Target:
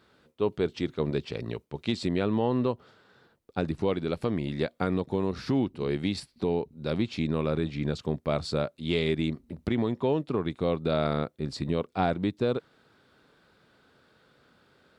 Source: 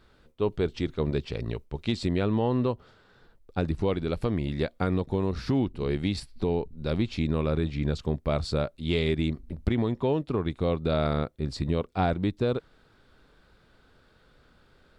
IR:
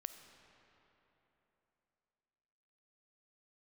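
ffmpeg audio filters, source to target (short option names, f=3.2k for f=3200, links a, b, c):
-af "highpass=130"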